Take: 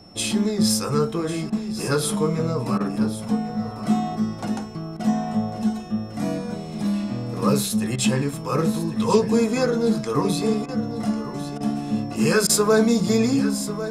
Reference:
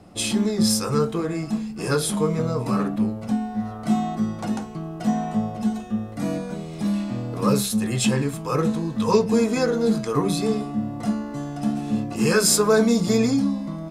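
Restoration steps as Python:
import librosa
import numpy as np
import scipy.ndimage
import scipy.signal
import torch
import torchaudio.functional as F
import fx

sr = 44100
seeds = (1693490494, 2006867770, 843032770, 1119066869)

y = fx.notch(x, sr, hz=5400.0, q=30.0)
y = fx.fix_interpolate(y, sr, at_s=(1.5, 2.78, 4.97, 7.96, 10.66, 11.58, 12.47), length_ms=23.0)
y = fx.fix_echo_inverse(y, sr, delay_ms=1097, level_db=-12.5)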